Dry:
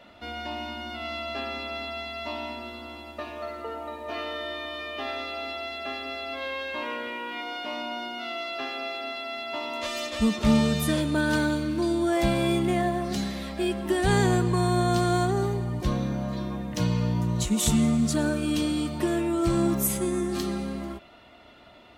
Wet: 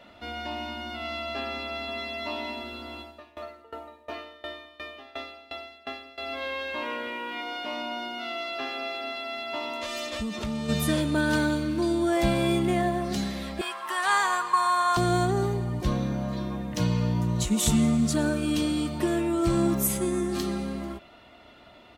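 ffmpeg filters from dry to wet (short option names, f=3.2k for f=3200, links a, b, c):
-filter_complex "[0:a]asplit=2[a][b];[b]afade=t=in:st=1.49:d=0.01,afade=t=out:st=2.24:d=0.01,aecho=0:1:390|780|1170|1560|1950|2340:0.530884|0.265442|0.132721|0.0663606|0.0331803|0.0165901[c];[a][c]amix=inputs=2:normalize=0,asettb=1/sr,asplit=3[d][e][f];[d]atrim=end=3.014[g];[e]atrim=start=3.01:end=6.18,asetpts=PTS-STARTPTS,afade=t=in:d=0.004:c=qsin,afade=t=out:st=3.166:d=0.004:c=qsin,aeval=exprs='val(0)*pow(10,-22*if(lt(mod(2.8*n/s,1),2*abs(2.8)/1000),1-mod(2.8*n/s,1)/(2*abs(2.8)/1000),(mod(2.8*n/s,1)-2*abs(2.8)/1000)/(1-2*abs(2.8)/1000))/20)':c=same[h];[f]atrim=start=6.176[i];[g][h]acrossfade=d=0.004:c1=hsin:c2=qsin[j];[j][i]acrossfade=d=0.004:c1=qsin:c2=hsin,asplit=3[k][l][m];[k]afade=t=out:st=9.68:d=0.02[n];[l]acompressor=threshold=-28dB:ratio=6:attack=3.2:release=140:knee=1:detection=peak,afade=t=in:st=9.68:d=0.02,afade=t=out:st=10.68:d=0.02[o];[m]afade=t=in:st=10.68:d=0.02[p];[n][o][p]amix=inputs=3:normalize=0,asettb=1/sr,asplit=3[q][r][s];[q]atrim=end=13.614[t];[r]atrim=start=13.61:end=14.97,asetpts=PTS-STARTPTS,afade=t=in:d=0.004:c=qsin,afade=t=out:st=1.356:d=0.004:c=qsin,highpass=f=1.1k:t=q:w=4.6[u];[s]atrim=start=14.966[v];[t][u]acrossfade=d=0.004:c1=hsin:c2=qsin[w];[w][v]acrossfade=d=0.004:c1=qsin:c2=hsin"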